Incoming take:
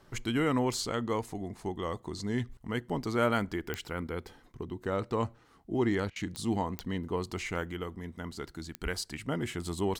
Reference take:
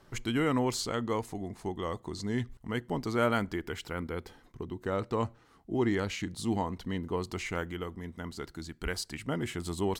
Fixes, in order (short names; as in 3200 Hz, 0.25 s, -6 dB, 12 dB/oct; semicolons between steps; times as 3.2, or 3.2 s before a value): de-click; interpolate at 6.1, 58 ms